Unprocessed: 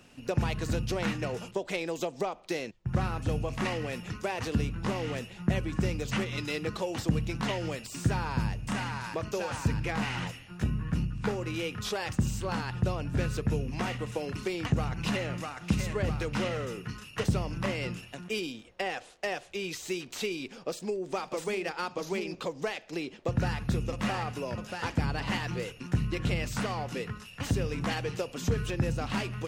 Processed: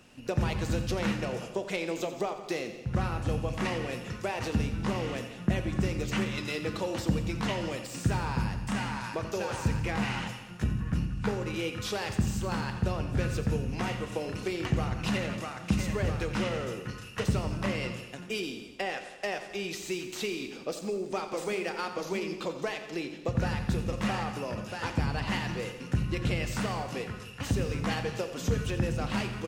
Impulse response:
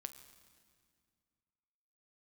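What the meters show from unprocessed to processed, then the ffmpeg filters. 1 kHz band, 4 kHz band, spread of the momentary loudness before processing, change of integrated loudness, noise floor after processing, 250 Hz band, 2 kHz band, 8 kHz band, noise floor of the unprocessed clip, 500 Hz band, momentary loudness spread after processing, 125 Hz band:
+0.5 dB, 0.0 dB, 5 LU, +0.5 dB, -44 dBFS, +1.0 dB, +0.5 dB, +0.5 dB, -51 dBFS, +0.5 dB, 5 LU, 0.0 dB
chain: -filter_complex "[0:a]aecho=1:1:87|174|261|348|435|522:0.251|0.146|0.0845|0.049|0.0284|0.0165[s0];[1:a]atrim=start_sample=2205,afade=t=out:st=0.35:d=0.01,atrim=end_sample=15876[s1];[s0][s1]afir=irnorm=-1:irlink=0,volume=1.58"

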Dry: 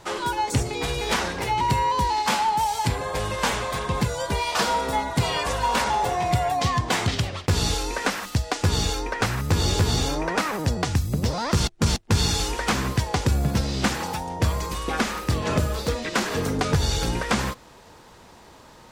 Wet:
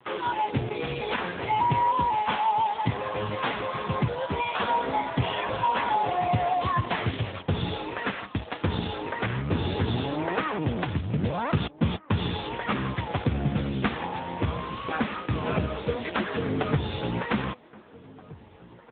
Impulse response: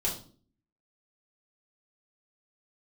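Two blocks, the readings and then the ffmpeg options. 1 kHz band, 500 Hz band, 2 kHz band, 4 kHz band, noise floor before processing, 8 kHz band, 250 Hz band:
-2.0 dB, -2.5 dB, -4.0 dB, -8.5 dB, -49 dBFS, under -40 dB, -2.0 dB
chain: -filter_complex "[0:a]acrusher=bits=6:dc=4:mix=0:aa=0.000001,asplit=2[s0][s1];[s1]adelay=1574,volume=0.1,highshelf=f=4000:g=-35.4[s2];[s0][s2]amix=inputs=2:normalize=0" -ar 8000 -c:a libopencore_amrnb -b:a 6700

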